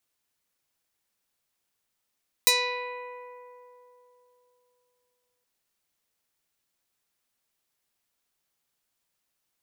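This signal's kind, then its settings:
Karplus-Strong string B4, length 2.97 s, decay 3.37 s, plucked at 0.31, medium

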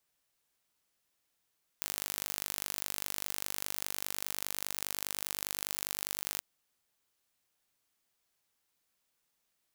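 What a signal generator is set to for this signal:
impulse train 49.9 per second, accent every 2, −7 dBFS 4.58 s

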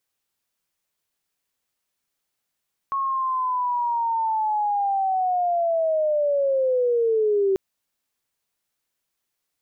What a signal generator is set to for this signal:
glide linear 1,100 Hz → 380 Hz −21.5 dBFS → −17 dBFS 4.64 s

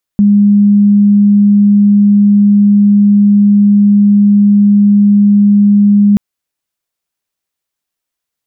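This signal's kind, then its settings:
tone sine 204 Hz −3.5 dBFS 5.98 s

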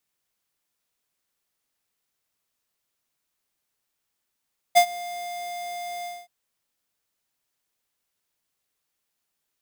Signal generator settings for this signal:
note with an ADSR envelope square 703 Hz, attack 23 ms, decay 81 ms, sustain −21 dB, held 1.30 s, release 224 ms −12.5 dBFS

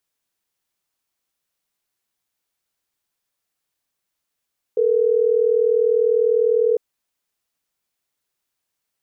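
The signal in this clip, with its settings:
call progress tone ringback tone, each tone −17 dBFS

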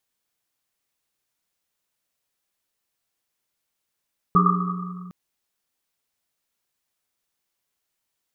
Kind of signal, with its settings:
drum after Risset length 0.76 s, pitch 180 Hz, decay 2.54 s, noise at 1,200 Hz, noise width 140 Hz, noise 50%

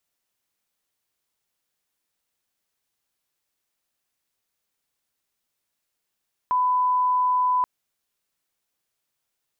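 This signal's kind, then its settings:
line-up tone −18 dBFS 1.13 s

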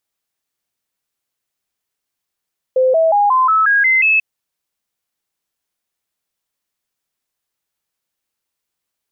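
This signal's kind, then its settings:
stepped sweep 516 Hz up, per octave 3, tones 8, 0.18 s, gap 0.00 s −9.5 dBFS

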